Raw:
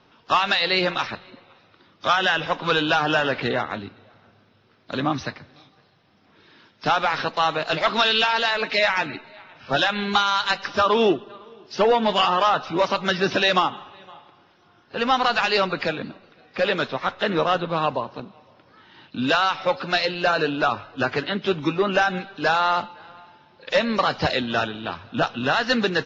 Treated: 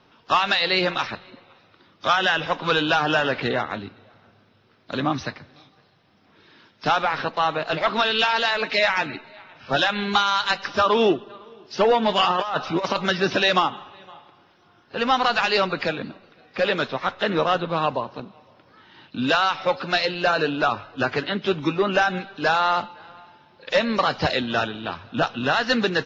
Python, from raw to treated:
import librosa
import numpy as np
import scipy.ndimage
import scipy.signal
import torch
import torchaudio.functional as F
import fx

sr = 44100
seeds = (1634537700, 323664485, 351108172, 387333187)

y = fx.high_shelf(x, sr, hz=4300.0, db=-10.0, at=(7.02, 8.19))
y = fx.over_compress(y, sr, threshold_db=-22.0, ratio=-0.5, at=(12.3, 13.06))